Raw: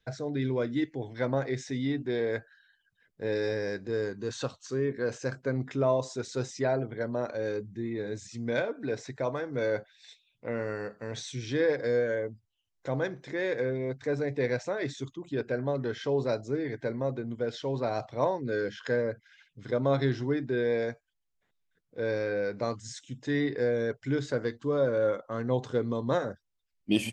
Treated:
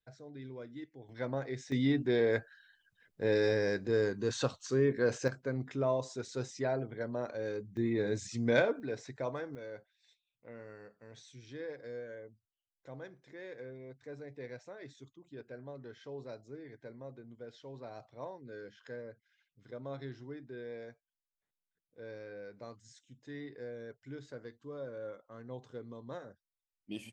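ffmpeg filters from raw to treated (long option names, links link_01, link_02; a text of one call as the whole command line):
ffmpeg -i in.wav -af "asetnsamples=nb_out_samples=441:pad=0,asendcmd='1.09 volume volume -7.5dB;1.72 volume volume 1dB;5.28 volume volume -5.5dB;7.77 volume volume 2dB;8.8 volume volume -6dB;9.55 volume volume -16.5dB',volume=-16.5dB" out.wav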